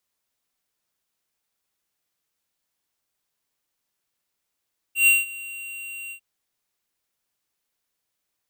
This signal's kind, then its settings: ADSR square 2.75 kHz, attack 121 ms, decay 180 ms, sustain -21 dB, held 1.16 s, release 87 ms -14.5 dBFS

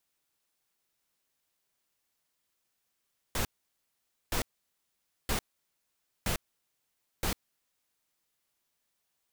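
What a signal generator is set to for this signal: noise bursts pink, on 0.10 s, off 0.87 s, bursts 5, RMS -30 dBFS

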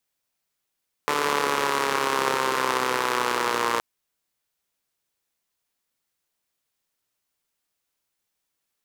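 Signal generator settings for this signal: four-cylinder engine model, changing speed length 2.72 s, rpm 4400, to 3500, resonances 460/1000 Hz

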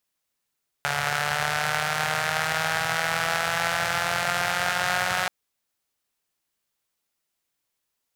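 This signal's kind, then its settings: four-cylinder engine model, changing speed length 4.43 s, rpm 4300, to 5500, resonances 130/760/1400 Hz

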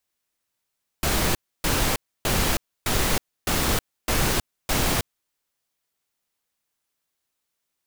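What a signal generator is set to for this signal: noise bursts pink, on 0.32 s, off 0.29 s, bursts 7, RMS -22 dBFS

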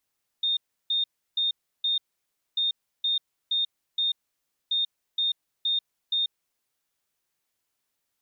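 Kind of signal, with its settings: beep pattern sine 3.66 kHz, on 0.14 s, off 0.33 s, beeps 4, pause 0.59 s, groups 3, -22 dBFS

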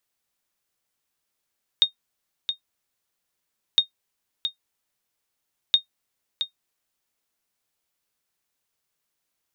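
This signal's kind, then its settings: sonar ping 3.7 kHz, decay 0.11 s, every 1.96 s, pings 3, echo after 0.67 s, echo -9 dB -7.5 dBFS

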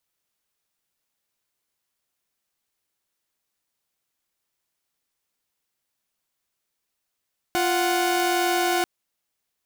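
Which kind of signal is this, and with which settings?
chord F4/F#5 saw, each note -20.5 dBFS 1.29 s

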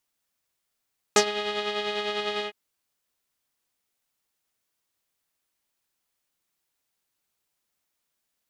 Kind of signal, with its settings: synth patch with tremolo G#4, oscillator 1 saw, interval +7 st, detune 18 cents, oscillator 2 level -7 dB, sub -18 dB, noise -11 dB, filter lowpass, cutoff 2.7 kHz, Q 3.1, filter envelope 1.5 oct, filter decay 0.09 s, filter sustain 25%, attack 2.2 ms, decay 0.09 s, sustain -13.5 dB, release 0.08 s, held 1.28 s, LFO 10 Hz, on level 5 dB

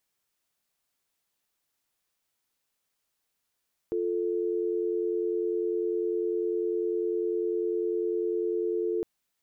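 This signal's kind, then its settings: call progress tone dial tone, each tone -28.5 dBFS 5.11 s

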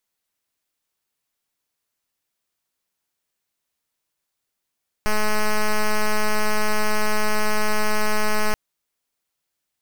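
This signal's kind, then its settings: pulse 213 Hz, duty 6% -18 dBFS 3.48 s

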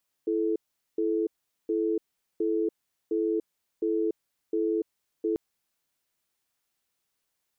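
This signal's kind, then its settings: cadence 332 Hz, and 434 Hz, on 0.29 s, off 0.42 s, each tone -26.5 dBFS 5.09 s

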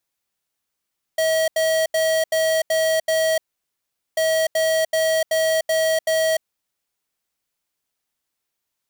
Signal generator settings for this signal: beep pattern square 641 Hz, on 0.30 s, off 0.08 s, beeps 6, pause 0.79 s, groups 2, -19 dBFS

